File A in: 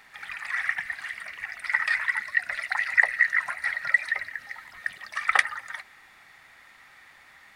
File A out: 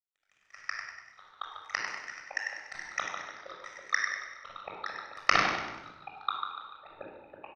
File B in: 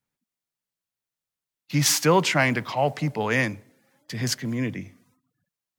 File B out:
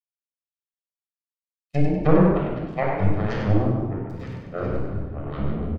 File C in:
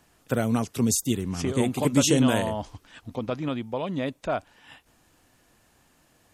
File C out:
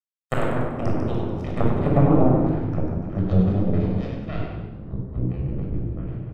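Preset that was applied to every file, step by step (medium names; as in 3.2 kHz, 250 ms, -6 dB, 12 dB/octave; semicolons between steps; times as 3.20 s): low-pass that closes with the level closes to 470 Hz, closed at -17 dBFS; power-law waveshaper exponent 3; frequency-shifting echo 97 ms, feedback 47%, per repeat +30 Hz, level -6 dB; ever faster or slower copies 376 ms, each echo -7 st, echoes 3, each echo -6 dB; simulated room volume 3000 m³, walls furnished, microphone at 6.3 m; trim +4.5 dB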